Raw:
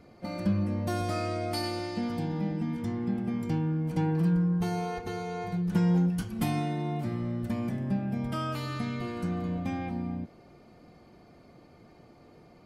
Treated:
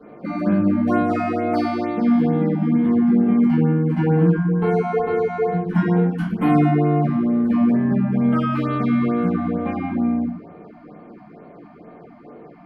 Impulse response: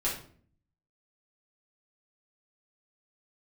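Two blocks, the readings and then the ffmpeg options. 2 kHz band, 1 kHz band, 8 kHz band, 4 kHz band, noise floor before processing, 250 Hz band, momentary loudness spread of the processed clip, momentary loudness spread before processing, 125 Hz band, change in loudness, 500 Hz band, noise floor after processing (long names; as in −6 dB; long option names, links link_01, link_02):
+9.5 dB, +11.0 dB, below −10 dB, can't be measured, −56 dBFS, +12.5 dB, 6 LU, 8 LU, +8.0 dB, +11.5 dB, +13.5 dB, −44 dBFS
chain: -filter_complex "[0:a]acrossover=split=160 2300:gain=0.0631 1 0.0631[link_01][link_02][link_03];[link_01][link_02][link_03]amix=inputs=3:normalize=0[link_04];[1:a]atrim=start_sample=2205,asetrate=52920,aresample=44100[link_05];[link_04][link_05]afir=irnorm=-1:irlink=0,afftfilt=real='re*(1-between(b*sr/1024,400*pow(6600/400,0.5+0.5*sin(2*PI*2.2*pts/sr))/1.41,400*pow(6600/400,0.5+0.5*sin(2*PI*2.2*pts/sr))*1.41))':imag='im*(1-between(b*sr/1024,400*pow(6600/400,0.5+0.5*sin(2*PI*2.2*pts/sr))/1.41,400*pow(6600/400,0.5+0.5*sin(2*PI*2.2*pts/sr))*1.41))':win_size=1024:overlap=0.75,volume=9dB"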